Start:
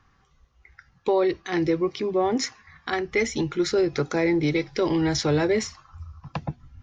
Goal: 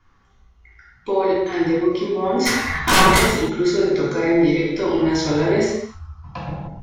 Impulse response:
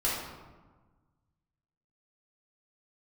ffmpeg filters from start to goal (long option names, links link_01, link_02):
-filter_complex "[0:a]asplit=3[link_01][link_02][link_03];[link_01]afade=type=out:start_time=2.45:duration=0.02[link_04];[link_02]aeval=exprs='0.251*sin(PI/2*8.91*val(0)/0.251)':channel_layout=same,afade=type=in:start_time=2.45:duration=0.02,afade=type=out:start_time=3.17:duration=0.02[link_05];[link_03]afade=type=in:start_time=3.17:duration=0.02[link_06];[link_04][link_05][link_06]amix=inputs=3:normalize=0[link_07];[1:a]atrim=start_sample=2205,afade=type=out:start_time=0.28:duration=0.01,atrim=end_sample=12789,asetrate=32193,aresample=44100[link_08];[link_07][link_08]afir=irnorm=-1:irlink=0,volume=-7dB"